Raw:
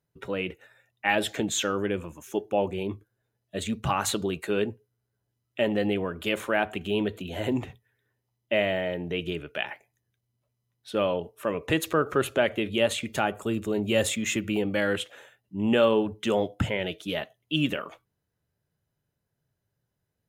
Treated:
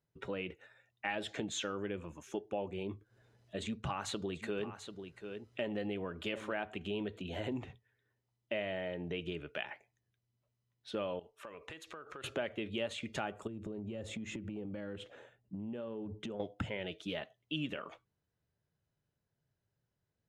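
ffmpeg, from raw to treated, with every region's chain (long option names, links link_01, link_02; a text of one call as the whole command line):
ffmpeg -i in.wav -filter_complex "[0:a]asettb=1/sr,asplit=3[link_01][link_02][link_03];[link_01]atrim=end=2.844[link_04];[link_02]atrim=start=2.84:end=6.53,asetpts=PTS-STARTPTS,afade=type=in:duration=0.004:curve=qsin,afade=type=out:start_time=3.686:duration=0.004:curve=qsin,acompressor=mode=upward:threshold=-47dB:ratio=2.5:attack=3.2:release=140:knee=2.83:detection=peak,aecho=1:1:739:0.2,atrim=end_sample=162729[link_05];[link_03]atrim=start=6.526[link_06];[link_04][link_05]acrossfade=duration=0.004:curve1=hsin:curve2=qsin[link_07];[link_07][link_06]acrossfade=duration=0.004:curve1=qsin:curve2=hsin,asettb=1/sr,asplit=3[link_08][link_09][link_10];[link_08]atrim=end=11.194[link_11];[link_09]atrim=start=11.19:end=12.24,asetpts=PTS-STARTPTS,afade=type=in:duration=0.004:curve=qsin,afade=type=out:start_time=1.046:duration=0.004:curve=qsin,equalizer=frequency=150:width=0.32:gain=-12,acompressor=threshold=-39dB:ratio=10:attack=3.2:release=140:knee=1:detection=peak[link_12];[link_10]atrim=start=12.236[link_13];[link_11][link_12]acrossfade=duration=0.004:curve1=hsin:curve2=qsin[link_14];[link_14][link_13]acrossfade=duration=0.004:curve1=qsin:curve2=hsin,asettb=1/sr,asplit=3[link_15][link_16][link_17];[link_15]atrim=end=13.474[link_18];[link_16]atrim=start=13.47:end=16.4,asetpts=PTS-STARTPTS,afade=type=in:duration=0.004:curve=qsin,afade=type=out:start_time=2.926:duration=0.004:curve=qsin,tiltshelf=frequency=760:gain=7.5,acompressor=threshold=-33dB:ratio=10:attack=3.2:release=140:knee=1:detection=peak[link_19];[link_17]atrim=start=16.396[link_20];[link_18][link_19]acrossfade=duration=0.004:curve1=hsin:curve2=qsin[link_21];[link_21][link_20]acrossfade=duration=0.004:curve1=qsin:curve2=hsin,lowpass=6200,acompressor=threshold=-33dB:ratio=2.5,volume=-4.5dB" out.wav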